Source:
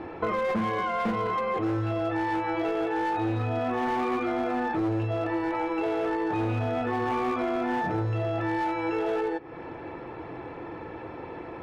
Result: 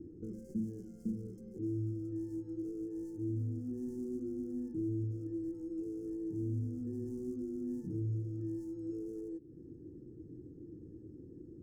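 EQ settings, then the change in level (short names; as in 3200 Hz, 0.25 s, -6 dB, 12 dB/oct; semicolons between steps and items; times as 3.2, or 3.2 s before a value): inverse Chebyshev band-stop 610–3900 Hz, stop band 40 dB; notch 2400 Hz, Q 8.6; -6.5 dB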